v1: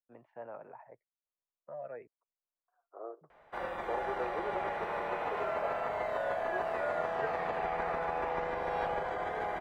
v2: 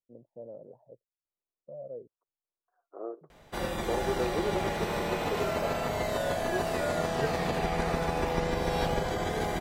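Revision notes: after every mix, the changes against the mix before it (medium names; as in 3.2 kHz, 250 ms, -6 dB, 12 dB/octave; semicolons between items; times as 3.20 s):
first voice: add four-pole ladder low-pass 590 Hz, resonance 65%; master: remove three-band isolator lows -17 dB, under 510 Hz, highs -24 dB, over 2.2 kHz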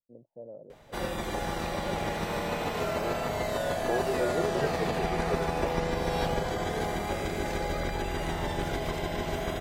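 background: entry -2.60 s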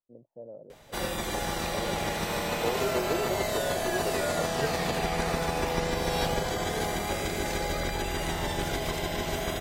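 second voice: entry -1.25 s; master: add treble shelf 3.1 kHz +9 dB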